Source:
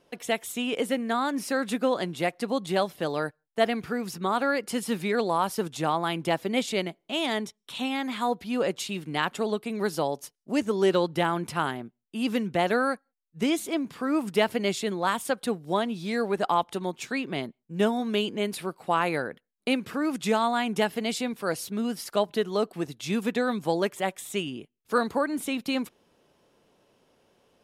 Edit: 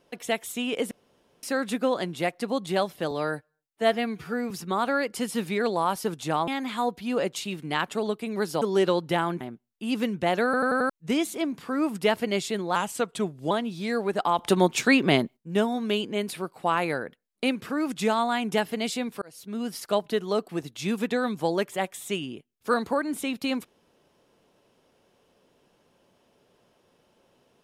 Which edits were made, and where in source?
0.91–1.43 s: room tone
3.11–4.04 s: stretch 1.5×
6.01–7.91 s: delete
10.05–10.68 s: delete
11.47–11.73 s: delete
12.77 s: stutter in place 0.09 s, 5 plays
15.08–15.75 s: speed 89%
16.63–17.61 s: gain +10.5 dB
21.46–21.97 s: fade in

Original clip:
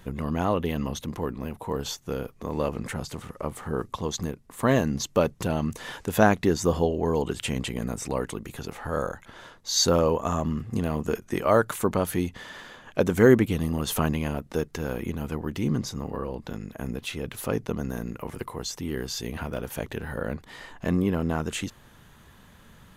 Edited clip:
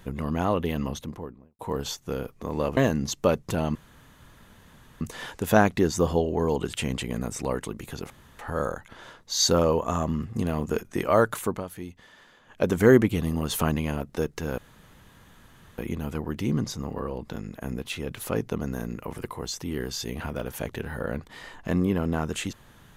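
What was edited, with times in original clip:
0.82–1.59 s: studio fade out
2.77–4.69 s: delete
5.67 s: insert room tone 1.26 s
8.76 s: insert room tone 0.29 s
11.74–13.06 s: dip -11.5 dB, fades 0.28 s
14.95 s: insert room tone 1.20 s

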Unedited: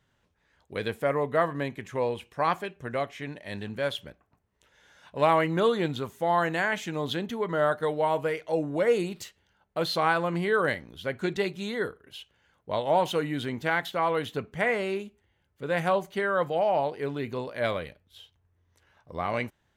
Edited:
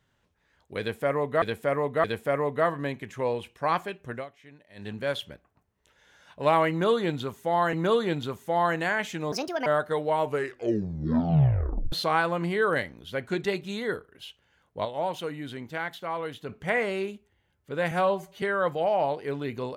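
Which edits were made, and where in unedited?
0.80–1.42 s: loop, 3 plays
2.89–3.64 s: dip -14.5 dB, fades 0.13 s
5.46–6.49 s: loop, 2 plays
7.05–7.58 s: speed 155%
8.12 s: tape stop 1.72 s
12.77–14.41 s: gain -6 dB
15.83–16.17 s: stretch 1.5×

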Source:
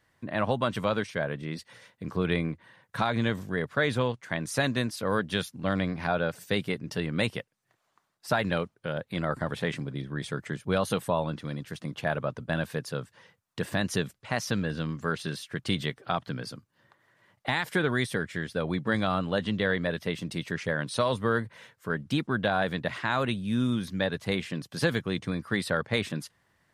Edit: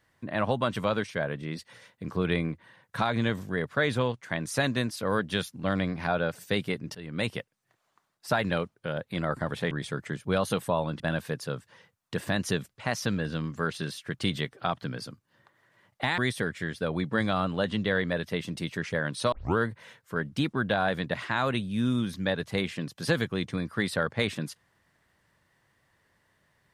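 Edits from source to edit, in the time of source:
6.95–7.33 s: fade in, from -18 dB
9.71–10.11 s: delete
11.40–12.45 s: delete
17.63–17.92 s: delete
21.06 s: tape start 0.25 s

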